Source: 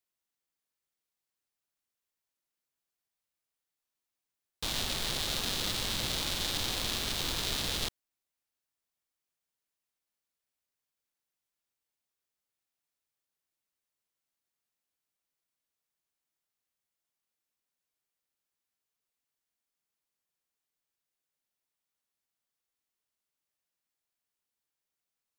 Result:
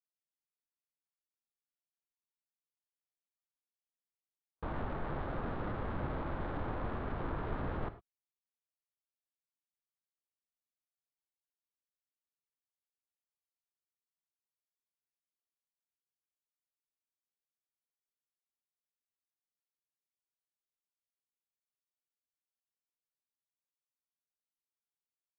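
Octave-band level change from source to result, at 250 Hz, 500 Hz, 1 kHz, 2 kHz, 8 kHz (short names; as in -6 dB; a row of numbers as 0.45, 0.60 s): +1.5 dB, +2.0 dB, +1.0 dB, -8.5 dB, under -40 dB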